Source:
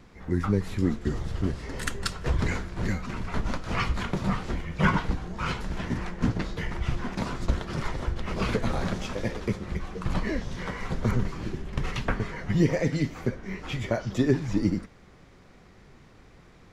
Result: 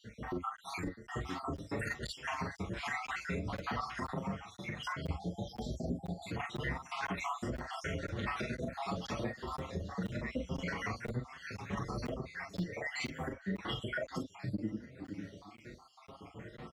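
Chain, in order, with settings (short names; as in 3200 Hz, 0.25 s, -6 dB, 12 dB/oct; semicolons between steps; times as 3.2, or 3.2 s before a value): random spectral dropouts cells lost 69%; HPF 83 Hz 24 dB/oct; high shelf 4000 Hz -7.5 dB; feedback echo 0.456 s, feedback 17%, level -23.5 dB; compressor 16:1, threshold -40 dBFS, peak gain reduction 22.5 dB; spectral delete 5.14–6.23, 840–3100 Hz; on a send at -2 dB: reverb, pre-delay 10 ms; on the sum: limiter -34.5 dBFS, peak gain reduction 7 dB; crackling interface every 0.50 s, samples 1024, zero, from 0.56; endless flanger 6.6 ms +1.1 Hz; gain +10.5 dB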